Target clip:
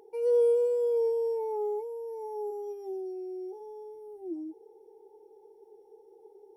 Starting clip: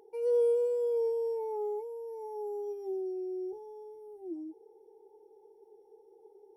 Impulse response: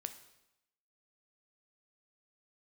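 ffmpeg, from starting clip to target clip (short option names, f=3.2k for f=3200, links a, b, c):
-filter_complex "[0:a]asplit=3[a][b][c];[a]afade=t=out:st=2.5:d=0.02[d];[b]highpass=430,afade=t=in:st=2.5:d=0.02,afade=t=out:st=3.59:d=0.02[e];[c]afade=t=in:st=3.59:d=0.02[f];[d][e][f]amix=inputs=3:normalize=0,volume=3dB"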